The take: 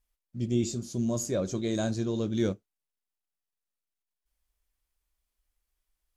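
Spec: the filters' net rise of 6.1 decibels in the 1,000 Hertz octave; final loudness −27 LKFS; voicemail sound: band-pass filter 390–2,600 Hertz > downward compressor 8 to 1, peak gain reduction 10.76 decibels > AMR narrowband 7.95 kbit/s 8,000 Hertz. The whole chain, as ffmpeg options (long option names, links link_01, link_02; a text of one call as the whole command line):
ffmpeg -i in.wav -af "highpass=390,lowpass=2600,equalizer=frequency=1000:width_type=o:gain=9,acompressor=threshold=-35dB:ratio=8,volume=14.5dB" -ar 8000 -c:a libopencore_amrnb -b:a 7950 out.amr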